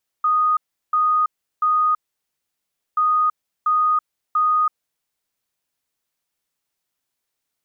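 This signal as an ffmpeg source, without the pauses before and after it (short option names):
-f lavfi -i "aevalsrc='0.188*sin(2*PI*1240*t)*clip(min(mod(mod(t,2.73),0.69),0.33-mod(mod(t,2.73),0.69))/0.005,0,1)*lt(mod(t,2.73),2.07)':d=5.46:s=44100"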